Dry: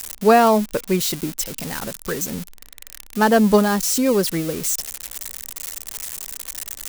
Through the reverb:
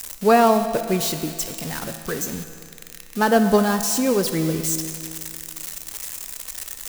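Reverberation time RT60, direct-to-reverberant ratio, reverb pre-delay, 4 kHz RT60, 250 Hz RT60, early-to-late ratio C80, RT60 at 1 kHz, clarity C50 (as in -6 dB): 2.4 s, 7.0 dB, 6 ms, 2.3 s, 2.4 s, 9.0 dB, 2.4 s, 8.5 dB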